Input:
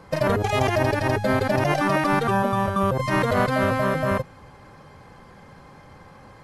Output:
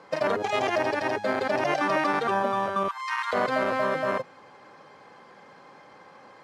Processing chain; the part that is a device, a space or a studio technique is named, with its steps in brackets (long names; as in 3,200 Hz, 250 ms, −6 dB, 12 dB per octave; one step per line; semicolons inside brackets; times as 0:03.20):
public-address speaker with an overloaded transformer (saturating transformer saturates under 370 Hz; band-pass filter 320–6,500 Hz)
0:02.88–0:03.33: Butterworth high-pass 880 Hz 72 dB per octave
level −1 dB